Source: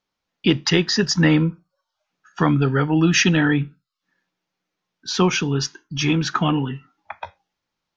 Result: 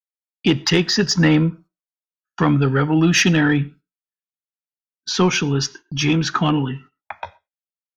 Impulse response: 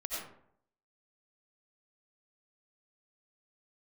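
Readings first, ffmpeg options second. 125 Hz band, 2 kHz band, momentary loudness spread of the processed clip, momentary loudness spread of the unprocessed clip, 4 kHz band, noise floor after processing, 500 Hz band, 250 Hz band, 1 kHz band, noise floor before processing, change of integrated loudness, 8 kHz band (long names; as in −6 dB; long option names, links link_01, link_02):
+1.5 dB, +1.5 dB, 18 LU, 18 LU, +1.5 dB, below −85 dBFS, +1.5 dB, +1.5 dB, +1.5 dB, −82 dBFS, +1.5 dB, can't be measured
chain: -filter_complex "[0:a]agate=range=-39dB:threshold=-42dB:ratio=16:detection=peak,acontrast=51,asplit=2[link_01][link_02];[1:a]atrim=start_sample=2205,atrim=end_sample=6174[link_03];[link_02][link_03]afir=irnorm=-1:irlink=0,volume=-24.5dB[link_04];[link_01][link_04]amix=inputs=2:normalize=0,volume=-4dB"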